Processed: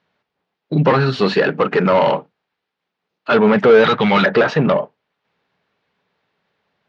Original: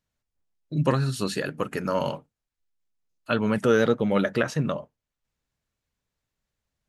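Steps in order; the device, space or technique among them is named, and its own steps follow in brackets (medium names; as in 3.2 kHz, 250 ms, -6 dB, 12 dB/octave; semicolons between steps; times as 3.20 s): 3.84–4.26 s: graphic EQ 125/250/500/1000/2000/4000/8000 Hz +5/-5/-9/+4/+8/+10/+6 dB; overdrive pedal into a guitar cabinet (overdrive pedal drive 25 dB, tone 2.1 kHz, clips at -7.5 dBFS; cabinet simulation 88–4400 Hz, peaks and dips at 180 Hz +8 dB, 420 Hz +6 dB, 810 Hz +3 dB); trim +2 dB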